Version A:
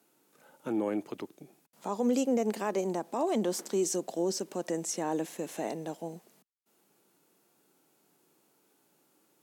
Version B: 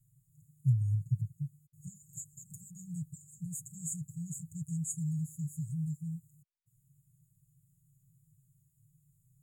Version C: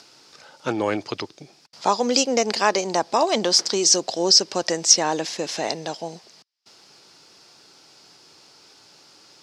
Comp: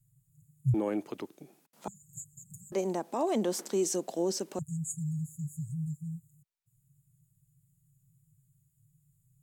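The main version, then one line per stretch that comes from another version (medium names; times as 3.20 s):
B
0.74–1.88 s: from A
2.72–4.59 s: from A
not used: C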